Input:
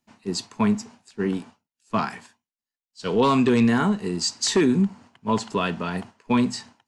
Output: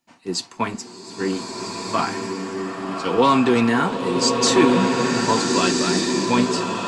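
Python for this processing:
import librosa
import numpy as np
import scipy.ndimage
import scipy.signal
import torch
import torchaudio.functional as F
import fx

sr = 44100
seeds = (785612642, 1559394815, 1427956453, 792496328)

y = fx.peak_eq(x, sr, hz=67.0, db=-13.5, octaves=2.0)
y = fx.notch_comb(y, sr, f0_hz=210.0)
y = fx.rev_bloom(y, sr, seeds[0], attack_ms=1510, drr_db=0.0)
y = y * 10.0 ** (5.0 / 20.0)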